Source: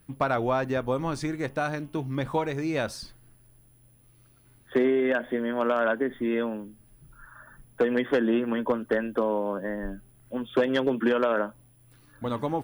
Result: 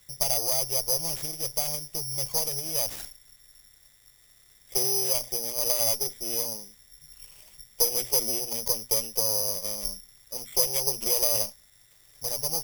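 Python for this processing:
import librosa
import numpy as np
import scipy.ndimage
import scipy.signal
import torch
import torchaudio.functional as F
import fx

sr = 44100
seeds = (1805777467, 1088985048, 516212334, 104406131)

p1 = fx.lower_of_two(x, sr, delay_ms=0.35)
p2 = fx.hum_notches(p1, sr, base_hz=60, count=4)
p3 = np.clip(p2, -10.0 ** (-23.0 / 20.0), 10.0 ** (-23.0 / 20.0))
p4 = p2 + (p3 * librosa.db_to_amplitude(-7.0))
p5 = fx.fixed_phaser(p4, sr, hz=660.0, stages=4)
p6 = (np.kron(p5[::8], np.eye(8)[0]) * 8)[:len(p5)]
y = p6 * librosa.db_to_amplitude(-8.0)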